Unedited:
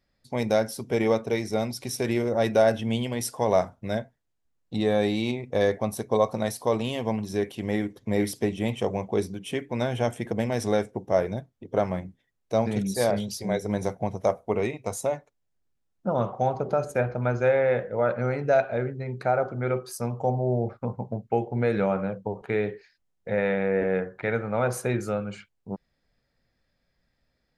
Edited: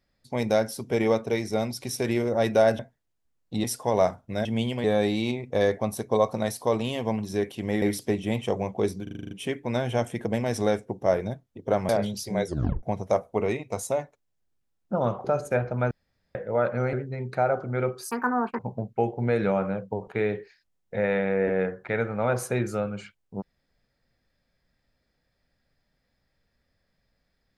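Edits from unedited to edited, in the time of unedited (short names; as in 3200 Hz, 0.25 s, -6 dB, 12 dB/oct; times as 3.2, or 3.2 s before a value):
2.79–3.18 swap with 3.99–4.84
7.82–8.16 cut
9.37 stutter 0.04 s, 8 plays
11.95–13.03 cut
13.6 tape stop 0.37 s
16.38–16.68 cut
17.35–17.79 room tone
18.37–18.81 cut
19.99–20.93 speed 196%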